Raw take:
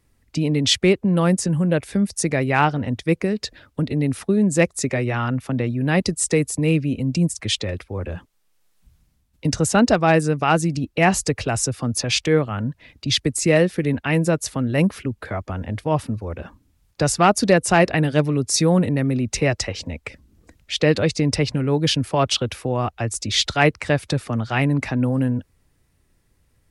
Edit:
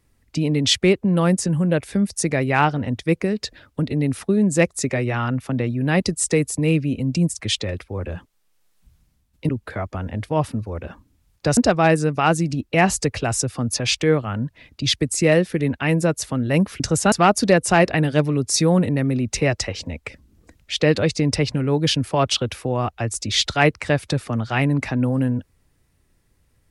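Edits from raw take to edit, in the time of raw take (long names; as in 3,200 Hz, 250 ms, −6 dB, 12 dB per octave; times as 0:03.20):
0:09.49–0:09.81: swap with 0:15.04–0:17.12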